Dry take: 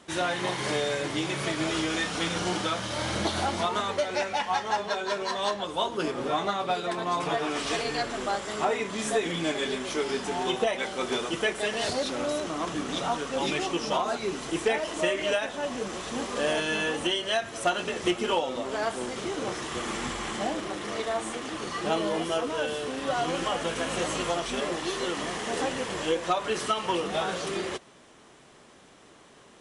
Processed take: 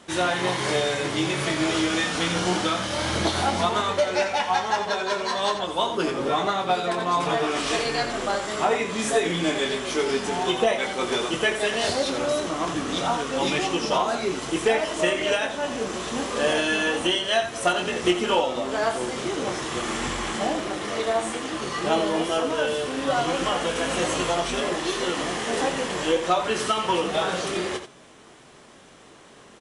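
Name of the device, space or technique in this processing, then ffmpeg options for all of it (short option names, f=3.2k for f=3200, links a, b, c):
slapback doubling: -filter_complex "[0:a]asplit=3[a][b][c];[b]adelay=22,volume=-8dB[d];[c]adelay=87,volume=-9.5dB[e];[a][d][e]amix=inputs=3:normalize=0,volume=3.5dB"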